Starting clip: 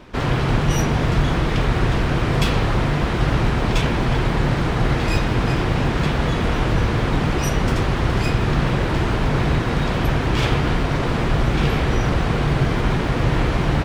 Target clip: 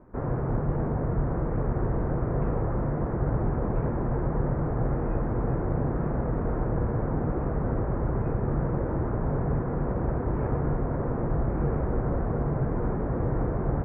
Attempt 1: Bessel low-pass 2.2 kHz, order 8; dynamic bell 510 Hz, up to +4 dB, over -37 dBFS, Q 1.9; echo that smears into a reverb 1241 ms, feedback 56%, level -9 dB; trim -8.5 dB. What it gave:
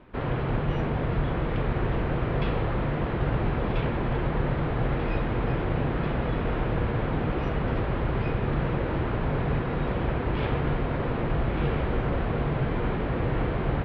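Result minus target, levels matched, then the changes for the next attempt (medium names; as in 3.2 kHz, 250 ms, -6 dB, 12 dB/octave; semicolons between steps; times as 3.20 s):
2 kHz band +9.5 dB
change: Bessel low-pass 920 Hz, order 8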